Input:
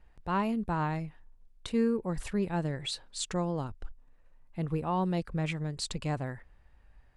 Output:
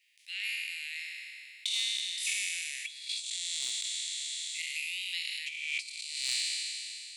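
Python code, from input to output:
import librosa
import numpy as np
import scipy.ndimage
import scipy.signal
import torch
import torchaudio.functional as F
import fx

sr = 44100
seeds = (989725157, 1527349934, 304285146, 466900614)

y = fx.spec_trails(x, sr, decay_s=2.77)
y = scipy.signal.sosfilt(scipy.signal.butter(12, 2100.0, 'highpass', fs=sr, output='sos'), y)
y = fx.over_compress(y, sr, threshold_db=-39.0, ratio=-0.5)
y = y + 10.0 ** (-15.5 / 20.0) * np.pad(y, (int(219 * sr / 1000.0), 0))[:len(y)]
y = 10.0 ** (-24.0 / 20.0) * np.tanh(y / 10.0 ** (-24.0 / 20.0))
y = fx.band_squash(y, sr, depth_pct=100, at=(3.09, 5.39))
y = F.gain(torch.from_numpy(y), 5.5).numpy()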